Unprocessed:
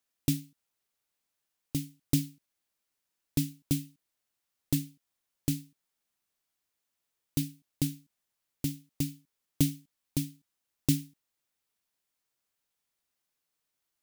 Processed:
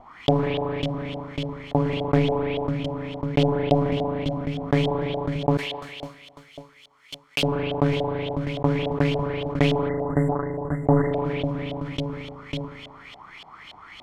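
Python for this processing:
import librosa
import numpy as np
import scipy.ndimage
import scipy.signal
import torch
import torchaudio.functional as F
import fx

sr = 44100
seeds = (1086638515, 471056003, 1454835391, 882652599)

p1 = fx.lower_of_two(x, sr, delay_ms=0.92)
p2 = fx.tilt_shelf(p1, sr, db=3.0, hz=1400.0, at=(2.16, 3.75))
p3 = p2 + fx.echo_feedback(p2, sr, ms=548, feedback_pct=49, wet_db=-22.5, dry=0)
p4 = fx.cheby_harmonics(p3, sr, harmonics=(6, 8), levels_db=(-10, -19), full_scale_db=-11.5)
p5 = fx.rev_spring(p4, sr, rt60_s=1.5, pass_ms=(37,), chirp_ms=35, drr_db=14.5)
p6 = fx.leveller(p5, sr, passes=2, at=(10.29, 11.02))
p7 = fx.spec_erase(p6, sr, start_s=9.89, length_s=1.25, low_hz=2100.0, high_hz=7100.0)
p8 = fx.filter_lfo_lowpass(p7, sr, shape='saw_up', hz=3.5, low_hz=650.0, high_hz=3400.0, q=5.0)
p9 = fx.pre_emphasis(p8, sr, coefficient=0.97, at=(5.57, 7.43))
p10 = fx.env_flatten(p9, sr, amount_pct=70)
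y = p10 * 10.0 ** (2.5 / 20.0)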